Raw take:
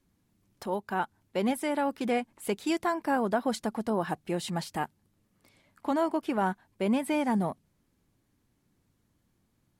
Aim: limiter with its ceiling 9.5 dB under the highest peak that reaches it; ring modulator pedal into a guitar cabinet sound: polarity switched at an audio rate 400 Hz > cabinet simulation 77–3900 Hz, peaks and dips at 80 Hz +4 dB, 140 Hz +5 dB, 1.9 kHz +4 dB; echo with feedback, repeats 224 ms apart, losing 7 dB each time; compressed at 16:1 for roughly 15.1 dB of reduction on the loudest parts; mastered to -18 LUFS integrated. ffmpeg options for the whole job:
-af "acompressor=threshold=0.0126:ratio=16,alimiter=level_in=3.76:limit=0.0631:level=0:latency=1,volume=0.266,aecho=1:1:224|448|672|896|1120:0.447|0.201|0.0905|0.0407|0.0183,aeval=exprs='val(0)*sgn(sin(2*PI*400*n/s))':c=same,highpass=77,equalizer=f=80:t=q:w=4:g=4,equalizer=f=140:t=q:w=4:g=5,equalizer=f=1900:t=q:w=4:g=4,lowpass=f=3900:w=0.5412,lowpass=f=3900:w=1.3066,volume=21.1"

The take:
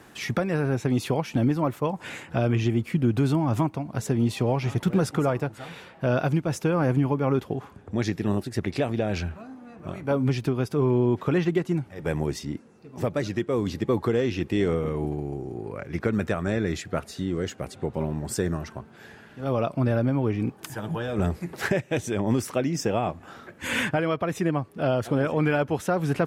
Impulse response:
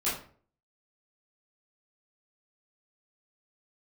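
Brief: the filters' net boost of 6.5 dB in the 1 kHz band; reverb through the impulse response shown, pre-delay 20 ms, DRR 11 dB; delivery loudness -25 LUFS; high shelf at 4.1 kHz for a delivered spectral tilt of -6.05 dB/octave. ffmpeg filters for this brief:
-filter_complex "[0:a]equalizer=f=1000:t=o:g=8.5,highshelf=f=4100:g=3,asplit=2[s0][s1];[1:a]atrim=start_sample=2205,adelay=20[s2];[s1][s2]afir=irnorm=-1:irlink=0,volume=0.106[s3];[s0][s3]amix=inputs=2:normalize=0"

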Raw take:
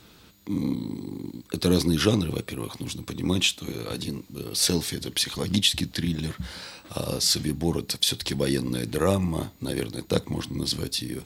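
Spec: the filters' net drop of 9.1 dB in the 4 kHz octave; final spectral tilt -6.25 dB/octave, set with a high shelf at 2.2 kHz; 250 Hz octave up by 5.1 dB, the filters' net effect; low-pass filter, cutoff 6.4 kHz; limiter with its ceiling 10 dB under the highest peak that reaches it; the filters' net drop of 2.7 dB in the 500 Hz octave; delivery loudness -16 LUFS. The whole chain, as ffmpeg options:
-af "lowpass=6400,equalizer=f=250:t=o:g=8.5,equalizer=f=500:t=o:g=-6.5,highshelf=f=2200:g=-7.5,equalizer=f=4000:t=o:g=-3.5,volume=4.22,alimiter=limit=0.668:level=0:latency=1"

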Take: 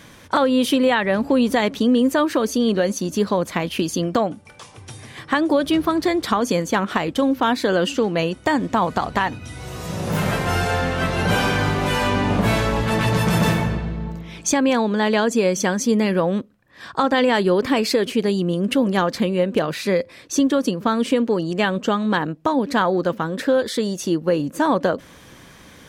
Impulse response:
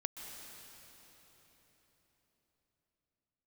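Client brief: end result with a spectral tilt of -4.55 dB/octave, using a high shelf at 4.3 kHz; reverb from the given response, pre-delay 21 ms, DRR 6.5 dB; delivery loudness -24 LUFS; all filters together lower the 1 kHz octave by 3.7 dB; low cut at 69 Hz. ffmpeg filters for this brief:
-filter_complex "[0:a]highpass=69,equalizer=f=1000:t=o:g=-5,highshelf=f=4300:g=4.5,asplit=2[s0][s1];[1:a]atrim=start_sample=2205,adelay=21[s2];[s1][s2]afir=irnorm=-1:irlink=0,volume=0.501[s3];[s0][s3]amix=inputs=2:normalize=0,volume=0.631"

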